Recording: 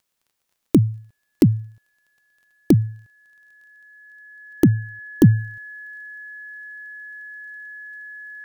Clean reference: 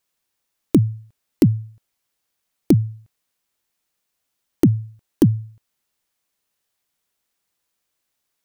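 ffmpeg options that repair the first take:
-af "adeclick=t=4,bandreject=f=1.7k:w=30,asetnsamples=n=441:p=0,asendcmd='5.24 volume volume -4dB',volume=0dB"

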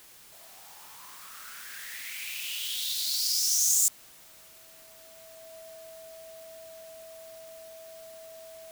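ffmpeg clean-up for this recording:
-af "adeclick=t=4,bandreject=f=650:w=30,afwtdn=0.0022"

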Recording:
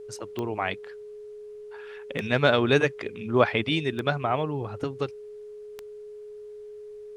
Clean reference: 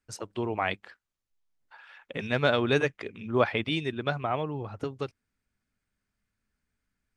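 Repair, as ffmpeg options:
-af "adeclick=t=4,bandreject=f=420:w=30,agate=range=-21dB:threshold=-34dB,asetnsamples=n=441:p=0,asendcmd='1.74 volume volume -3.5dB',volume=0dB"

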